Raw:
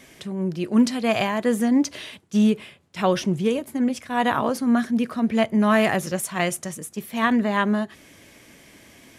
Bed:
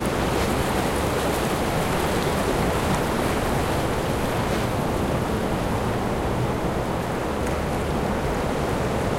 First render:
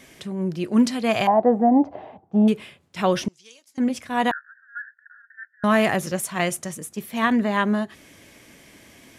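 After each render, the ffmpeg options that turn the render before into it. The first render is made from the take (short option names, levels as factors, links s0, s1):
-filter_complex "[0:a]asettb=1/sr,asplit=3[s0][s1][s2];[s0]atrim=end=1.274[s3];[s1]atrim=start=1.27:end=2.48,asetpts=PTS-STARTPTS,afade=t=in:d=0.004:c=qsin,afade=t=out:st=1.206:d=0.004:c=qsin,lowpass=f=770:t=q:w=8.8[s4];[s2]atrim=start=2.476[s5];[s3][s4]acrossfade=d=0.004:c1=hsin:c2=qsin[s6];[s6][s5]acrossfade=d=0.004:c1=qsin:c2=hsin,asettb=1/sr,asplit=3[s7][s8][s9];[s7]atrim=end=3.284[s10];[s8]atrim=start=3.28:end=3.78,asetpts=PTS-STARTPTS,afade=t=in:d=0.004:c=qsin,afade=t=out:st=0.496:d=0.004:c=qsin,bandpass=f=5500:t=q:w=3.2[s11];[s9]atrim=start=3.776[s12];[s10][s11]acrossfade=d=0.004:c1=hsin:c2=qsin[s13];[s13][s12]acrossfade=d=0.004:c1=qsin:c2=hsin,asettb=1/sr,asplit=3[s14][s15][s16];[s14]atrim=end=4.314[s17];[s15]atrim=start=4.31:end=5.64,asetpts=PTS-STARTPTS,afade=t=in:d=0.004:c=qsin,afade=t=out:st=1.326:d=0.004:c=qsin,asuperpass=centerf=1600:order=12:qfactor=3.8[s18];[s16]atrim=start=5.636[s19];[s17][s18]acrossfade=d=0.004:c1=hsin:c2=qsin[s20];[s20][s19]acrossfade=d=0.004:c1=qsin:c2=hsin"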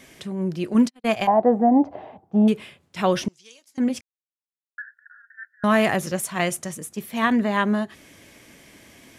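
-filter_complex "[0:a]asplit=3[s0][s1][s2];[s0]afade=t=out:st=0.73:d=0.02[s3];[s1]agate=range=0.00251:threshold=0.0708:ratio=16:release=100:detection=peak,afade=t=in:st=0.73:d=0.02,afade=t=out:st=1.41:d=0.02[s4];[s2]afade=t=in:st=1.41:d=0.02[s5];[s3][s4][s5]amix=inputs=3:normalize=0,asplit=3[s6][s7][s8];[s6]atrim=end=4.01,asetpts=PTS-STARTPTS,afade=t=out:st=4.006:d=0.004:c=hsin[s9];[s7]atrim=start=4.01:end=4.78,asetpts=PTS-STARTPTS,volume=0[s10];[s8]atrim=start=4.78,asetpts=PTS-STARTPTS,afade=t=in:d=0.004:c=hsin[s11];[s9][s10][s11]concat=n=3:v=0:a=1"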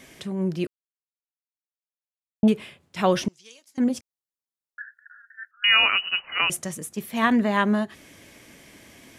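-filter_complex "[0:a]asettb=1/sr,asplit=3[s0][s1][s2];[s0]atrim=end=3.844[s3];[s1]atrim=start=3.84:end=4.81,asetpts=PTS-STARTPTS,afade=t=in:d=0.004:c=qsin,afade=t=out:st=0.966:d=0.004:c=qsin,equalizer=f=2300:w=1.5:g=-9.5[s4];[s2]atrim=start=4.806[s5];[s3][s4]acrossfade=d=0.004:c1=hsin:c2=qsin[s6];[s6][s5]acrossfade=d=0.004:c1=qsin:c2=hsin,asettb=1/sr,asplit=3[s7][s8][s9];[s7]atrim=end=5.514[s10];[s8]atrim=start=5.51:end=6.5,asetpts=PTS-STARTPTS,afade=t=in:d=0.004:c=qsin,afade=t=out:st=0.986:d=0.004:c=qsin,lowpass=f=2600:t=q:w=0.5098,lowpass=f=2600:t=q:w=0.6013,lowpass=f=2600:t=q:w=0.9,lowpass=f=2600:t=q:w=2.563,afreqshift=-3100[s11];[s9]atrim=start=6.496[s12];[s10][s11]acrossfade=d=0.004:c1=hsin:c2=qsin[s13];[s13][s12]acrossfade=d=0.004:c1=qsin:c2=hsin,asplit=3[s14][s15][s16];[s14]atrim=end=0.67,asetpts=PTS-STARTPTS,afade=t=out:st=0.666:d=0.004:c=hsin[s17];[s15]atrim=start=0.67:end=2.43,asetpts=PTS-STARTPTS,volume=0[s18];[s16]atrim=start=2.43,asetpts=PTS-STARTPTS,afade=t=in:d=0.004:c=hsin[s19];[s17][s18][s19]concat=n=3:v=0:a=1"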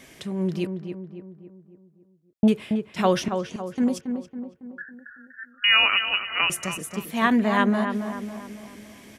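-filter_complex "[0:a]asplit=2[s0][s1];[s1]adelay=277,lowpass=f=1700:p=1,volume=0.473,asplit=2[s2][s3];[s3]adelay=277,lowpass=f=1700:p=1,volume=0.52,asplit=2[s4][s5];[s5]adelay=277,lowpass=f=1700:p=1,volume=0.52,asplit=2[s6][s7];[s7]adelay=277,lowpass=f=1700:p=1,volume=0.52,asplit=2[s8][s9];[s9]adelay=277,lowpass=f=1700:p=1,volume=0.52,asplit=2[s10][s11];[s11]adelay=277,lowpass=f=1700:p=1,volume=0.52[s12];[s0][s2][s4][s6][s8][s10][s12]amix=inputs=7:normalize=0"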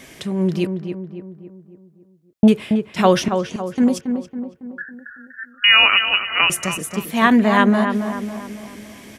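-af "volume=2.11,alimiter=limit=0.891:level=0:latency=1"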